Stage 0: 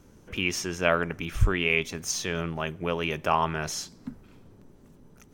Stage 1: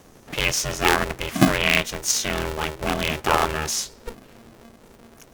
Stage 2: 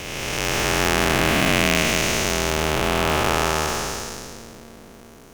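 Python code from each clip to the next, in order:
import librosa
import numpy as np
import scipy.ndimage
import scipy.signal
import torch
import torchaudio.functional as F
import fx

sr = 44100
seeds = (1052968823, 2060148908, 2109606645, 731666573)

y1 = fx.high_shelf(x, sr, hz=4800.0, db=7.0)
y1 = y1 * np.sign(np.sin(2.0 * np.pi * 230.0 * np.arange(len(y1)) / sr))
y1 = y1 * librosa.db_to_amplitude(4.0)
y2 = fx.spec_blur(y1, sr, span_ms=787.0)
y2 = y2 * librosa.db_to_amplitude(7.0)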